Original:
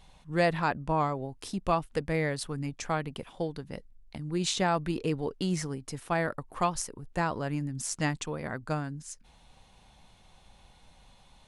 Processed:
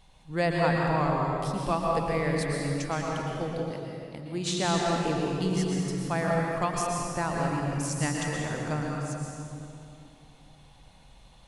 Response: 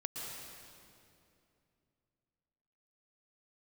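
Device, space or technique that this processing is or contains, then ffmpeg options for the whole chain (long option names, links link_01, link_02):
stairwell: -filter_complex "[1:a]atrim=start_sample=2205[link_01];[0:a][link_01]afir=irnorm=-1:irlink=0,asettb=1/sr,asplit=3[link_02][link_03][link_04];[link_02]atrim=end=3.714[link_05];[link_03]atrim=start=3.71:end=4.65,asetpts=PTS-STARTPTS,afade=type=in:duration=0.004:curve=qsin,afade=type=out:start_time=0.936:duration=0.004:curve=qsin,highpass=frequency=150:poles=1[link_06];[link_04]atrim=start=4.646[link_07];[link_05][link_06]acrossfade=duration=0.004:curve1=hsin:curve2=qsin[link_08];[link_08][link_07]acrossfade=duration=0.004:curve1=qsin:curve2=hsin,volume=1.5dB"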